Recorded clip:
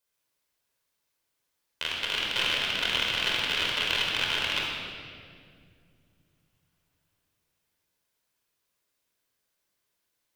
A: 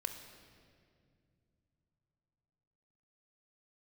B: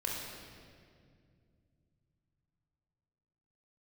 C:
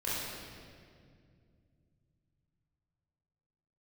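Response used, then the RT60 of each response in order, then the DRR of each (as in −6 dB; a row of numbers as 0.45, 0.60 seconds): B; 2.4, 2.2, 2.2 seconds; 6.0, −3.5, −10.0 decibels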